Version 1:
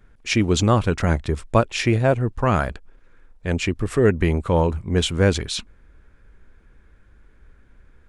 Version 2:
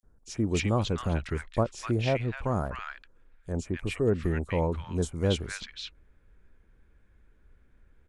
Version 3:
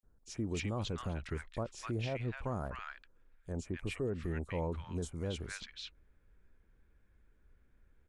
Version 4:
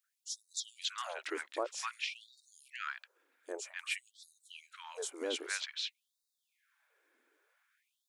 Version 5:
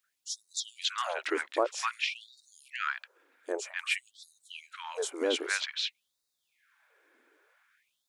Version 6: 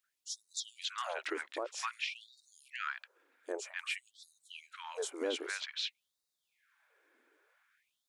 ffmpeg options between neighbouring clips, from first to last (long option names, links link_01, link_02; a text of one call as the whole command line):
ffmpeg -i in.wav -filter_complex "[0:a]acrossover=split=1300|5200[link_01][link_02][link_03];[link_01]adelay=30[link_04];[link_02]adelay=280[link_05];[link_04][link_05][link_03]amix=inputs=3:normalize=0,volume=-8.5dB" out.wav
ffmpeg -i in.wav -af "alimiter=limit=-21dB:level=0:latency=1:release=57,volume=-6.5dB" out.wav
ffmpeg -i in.wav -af "tiltshelf=frequency=970:gain=-3,afftfilt=real='re*gte(b*sr/1024,250*pow(3700/250,0.5+0.5*sin(2*PI*0.52*pts/sr)))':imag='im*gte(b*sr/1024,250*pow(3700/250,0.5+0.5*sin(2*PI*0.52*pts/sr)))':win_size=1024:overlap=0.75,volume=5.5dB" out.wav
ffmpeg -i in.wav -af "highshelf=frequency=4500:gain=-7,volume=8.5dB" out.wav
ffmpeg -i in.wav -af "alimiter=limit=-21dB:level=0:latency=1:release=142,volume=-4.5dB" out.wav